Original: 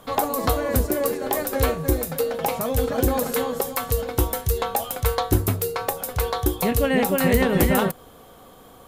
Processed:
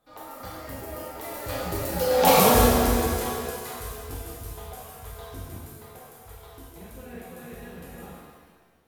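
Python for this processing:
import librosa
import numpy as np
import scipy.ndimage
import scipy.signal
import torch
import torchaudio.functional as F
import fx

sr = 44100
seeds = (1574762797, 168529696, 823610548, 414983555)

y = fx.doppler_pass(x, sr, speed_mps=30, closest_m=3.0, pass_at_s=2.34)
y = fx.dynamic_eq(y, sr, hz=4800.0, q=0.82, threshold_db=-59.0, ratio=4.0, max_db=6)
y = fx.rev_shimmer(y, sr, seeds[0], rt60_s=1.5, semitones=7, shimmer_db=-8, drr_db=-7.0)
y = y * 10.0 ** (2.5 / 20.0)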